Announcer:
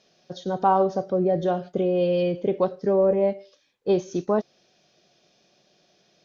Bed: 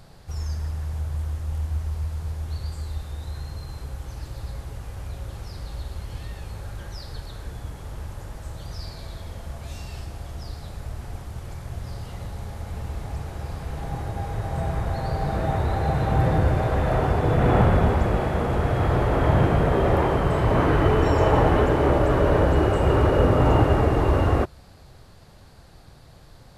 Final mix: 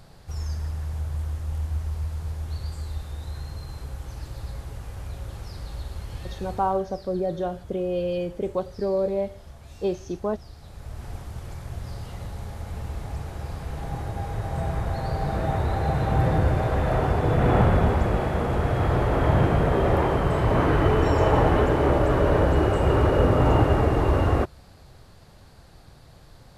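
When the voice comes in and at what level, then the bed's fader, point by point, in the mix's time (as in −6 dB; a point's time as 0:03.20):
5.95 s, −4.5 dB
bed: 0:06.52 −1 dB
0:06.84 −9.5 dB
0:10.56 −9.5 dB
0:11.07 −1 dB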